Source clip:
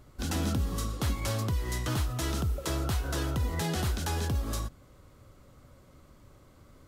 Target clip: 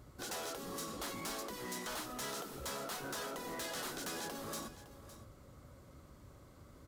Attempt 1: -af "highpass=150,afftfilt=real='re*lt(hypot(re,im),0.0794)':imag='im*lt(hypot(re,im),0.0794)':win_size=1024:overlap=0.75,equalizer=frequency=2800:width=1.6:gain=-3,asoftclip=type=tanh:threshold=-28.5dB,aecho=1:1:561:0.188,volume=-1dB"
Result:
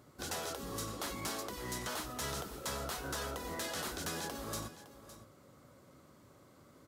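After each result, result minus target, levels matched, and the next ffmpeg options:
soft clipping: distortion −8 dB; 125 Hz band +4.0 dB
-af "highpass=150,afftfilt=real='re*lt(hypot(re,im),0.0794)':imag='im*lt(hypot(re,im),0.0794)':win_size=1024:overlap=0.75,equalizer=frequency=2800:width=1.6:gain=-3,asoftclip=type=tanh:threshold=-35.5dB,aecho=1:1:561:0.188,volume=-1dB"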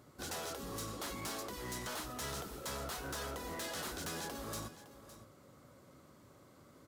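125 Hz band +4.5 dB
-af "highpass=38,afftfilt=real='re*lt(hypot(re,im),0.0794)':imag='im*lt(hypot(re,im),0.0794)':win_size=1024:overlap=0.75,equalizer=frequency=2800:width=1.6:gain=-3,asoftclip=type=tanh:threshold=-35.5dB,aecho=1:1:561:0.188,volume=-1dB"

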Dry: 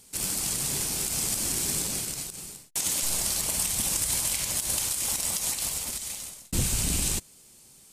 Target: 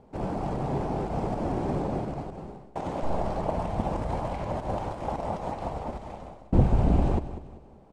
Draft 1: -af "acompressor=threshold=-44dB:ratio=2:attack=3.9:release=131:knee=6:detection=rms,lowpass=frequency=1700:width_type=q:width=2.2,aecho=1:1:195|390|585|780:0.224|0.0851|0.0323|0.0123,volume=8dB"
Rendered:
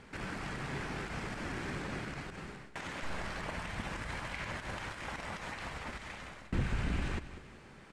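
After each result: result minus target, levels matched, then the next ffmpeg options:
2,000 Hz band +17.5 dB; downward compressor: peak gain reduction +13 dB
-af "acompressor=threshold=-44dB:ratio=2:attack=3.9:release=131:knee=6:detection=rms,lowpass=frequency=750:width_type=q:width=2.2,aecho=1:1:195|390|585|780:0.224|0.0851|0.0323|0.0123,volume=8dB"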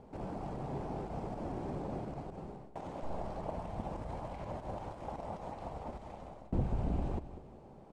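downward compressor: peak gain reduction +13 dB
-af "lowpass=frequency=750:width_type=q:width=2.2,aecho=1:1:195|390|585|780:0.224|0.0851|0.0323|0.0123,volume=8dB"

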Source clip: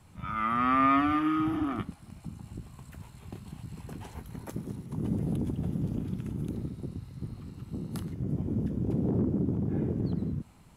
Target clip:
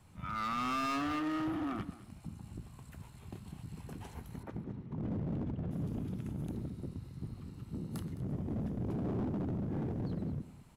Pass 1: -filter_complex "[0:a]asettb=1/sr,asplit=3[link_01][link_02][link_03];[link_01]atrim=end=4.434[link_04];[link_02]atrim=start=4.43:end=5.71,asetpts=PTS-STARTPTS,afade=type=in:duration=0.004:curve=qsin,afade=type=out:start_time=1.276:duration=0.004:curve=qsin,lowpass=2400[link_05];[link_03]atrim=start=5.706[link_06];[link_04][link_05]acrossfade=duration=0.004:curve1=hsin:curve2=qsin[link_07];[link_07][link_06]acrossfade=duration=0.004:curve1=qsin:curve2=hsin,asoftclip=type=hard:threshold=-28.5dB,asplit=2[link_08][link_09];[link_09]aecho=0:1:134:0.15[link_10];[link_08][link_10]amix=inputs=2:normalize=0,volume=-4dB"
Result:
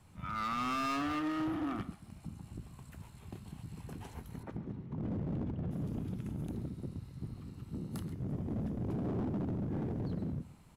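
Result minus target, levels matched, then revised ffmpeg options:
echo 77 ms early
-filter_complex "[0:a]asettb=1/sr,asplit=3[link_01][link_02][link_03];[link_01]atrim=end=4.434[link_04];[link_02]atrim=start=4.43:end=5.71,asetpts=PTS-STARTPTS,afade=type=in:duration=0.004:curve=qsin,afade=type=out:start_time=1.276:duration=0.004:curve=qsin,lowpass=2400[link_05];[link_03]atrim=start=5.706[link_06];[link_04][link_05]acrossfade=duration=0.004:curve1=hsin:curve2=qsin[link_07];[link_07][link_06]acrossfade=duration=0.004:curve1=qsin:curve2=hsin,asoftclip=type=hard:threshold=-28.5dB,asplit=2[link_08][link_09];[link_09]aecho=0:1:211:0.15[link_10];[link_08][link_10]amix=inputs=2:normalize=0,volume=-4dB"

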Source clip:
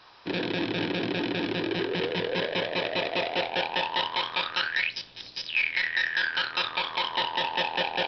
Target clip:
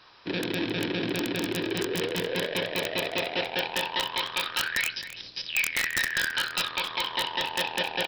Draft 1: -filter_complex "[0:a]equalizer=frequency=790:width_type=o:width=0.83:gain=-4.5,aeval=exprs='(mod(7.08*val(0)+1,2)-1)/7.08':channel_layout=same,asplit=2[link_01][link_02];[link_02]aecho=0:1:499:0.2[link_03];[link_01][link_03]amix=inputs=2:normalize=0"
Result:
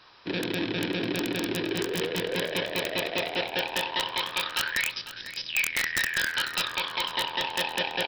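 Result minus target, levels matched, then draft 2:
echo 234 ms late
-filter_complex "[0:a]equalizer=frequency=790:width_type=o:width=0.83:gain=-4.5,aeval=exprs='(mod(7.08*val(0)+1,2)-1)/7.08':channel_layout=same,asplit=2[link_01][link_02];[link_02]aecho=0:1:265:0.2[link_03];[link_01][link_03]amix=inputs=2:normalize=0"

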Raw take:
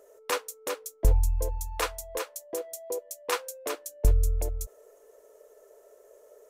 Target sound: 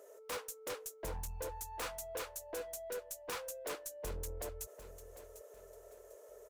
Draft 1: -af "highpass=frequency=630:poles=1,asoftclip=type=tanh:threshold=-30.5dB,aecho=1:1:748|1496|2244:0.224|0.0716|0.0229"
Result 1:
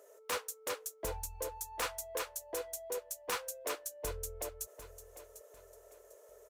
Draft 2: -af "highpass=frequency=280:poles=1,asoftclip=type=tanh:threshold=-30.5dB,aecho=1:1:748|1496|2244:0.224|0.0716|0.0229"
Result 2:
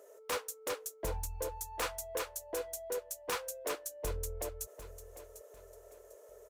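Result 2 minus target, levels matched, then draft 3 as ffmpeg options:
soft clipping: distortion −5 dB
-af "highpass=frequency=280:poles=1,asoftclip=type=tanh:threshold=-38dB,aecho=1:1:748|1496|2244:0.224|0.0716|0.0229"

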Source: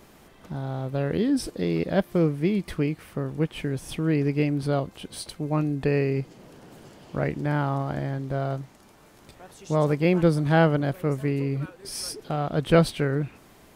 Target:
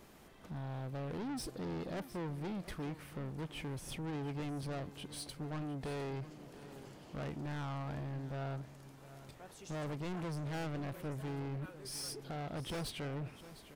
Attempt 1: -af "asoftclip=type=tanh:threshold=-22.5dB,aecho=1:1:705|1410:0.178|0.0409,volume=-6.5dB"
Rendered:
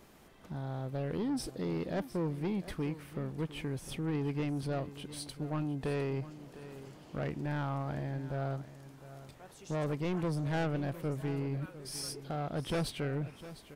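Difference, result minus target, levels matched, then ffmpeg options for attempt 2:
soft clipping: distortion −5 dB
-af "asoftclip=type=tanh:threshold=-31.5dB,aecho=1:1:705|1410:0.178|0.0409,volume=-6.5dB"

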